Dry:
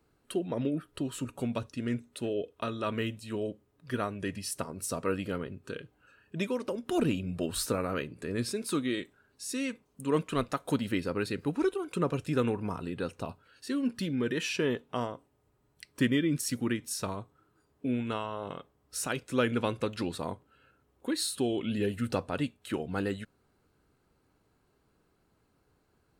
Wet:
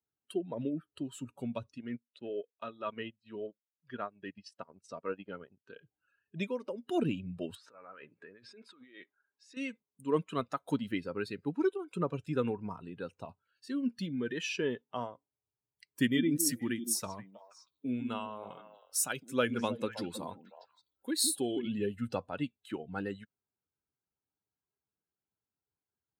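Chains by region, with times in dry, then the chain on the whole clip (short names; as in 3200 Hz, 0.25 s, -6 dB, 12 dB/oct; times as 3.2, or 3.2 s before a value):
1.78–5.82 LPF 4300 Hz + low shelf 88 Hz -11.5 dB + transient shaper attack -2 dB, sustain -12 dB
7.55–9.57 negative-ratio compressor -37 dBFS + LPF 1600 Hz + tilt +4 dB/oct
15.95–21.68 high shelf 7600 Hz +11.5 dB + delay with a stepping band-pass 0.159 s, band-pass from 250 Hz, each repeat 1.4 oct, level -3.5 dB
whole clip: per-bin expansion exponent 1.5; HPF 130 Hz 12 dB/oct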